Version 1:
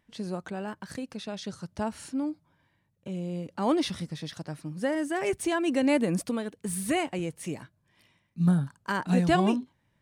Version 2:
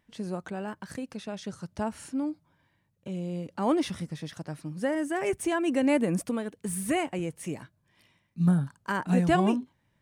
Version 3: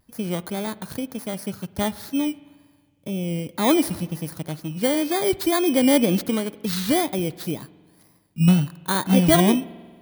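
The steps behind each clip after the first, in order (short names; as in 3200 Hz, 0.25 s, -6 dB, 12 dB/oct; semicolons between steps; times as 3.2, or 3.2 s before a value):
dynamic EQ 4200 Hz, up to -7 dB, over -55 dBFS, Q 1.8
FFT order left unsorted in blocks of 16 samples; vibrato 2 Hz 78 cents; spring tank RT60 1.6 s, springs 46 ms, chirp 50 ms, DRR 18.5 dB; gain +7 dB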